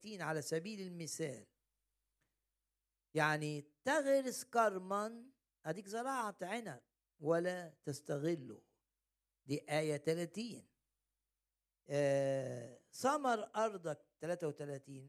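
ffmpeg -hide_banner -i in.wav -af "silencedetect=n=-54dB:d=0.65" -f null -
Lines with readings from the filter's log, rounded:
silence_start: 1.43
silence_end: 3.15 | silence_duration: 1.71
silence_start: 8.58
silence_end: 9.48 | silence_duration: 0.90
silence_start: 10.60
silence_end: 11.88 | silence_duration: 1.28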